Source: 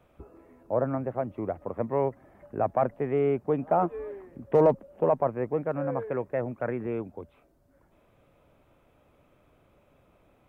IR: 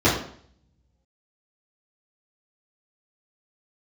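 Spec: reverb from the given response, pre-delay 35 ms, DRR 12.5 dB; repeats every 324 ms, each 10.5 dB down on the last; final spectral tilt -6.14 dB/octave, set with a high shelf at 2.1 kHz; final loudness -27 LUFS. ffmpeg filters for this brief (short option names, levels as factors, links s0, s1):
-filter_complex "[0:a]highshelf=f=2100:g=-6.5,aecho=1:1:324|648|972:0.299|0.0896|0.0269,asplit=2[s0][s1];[1:a]atrim=start_sample=2205,adelay=35[s2];[s1][s2]afir=irnorm=-1:irlink=0,volume=0.0251[s3];[s0][s3]amix=inputs=2:normalize=0,volume=1.12"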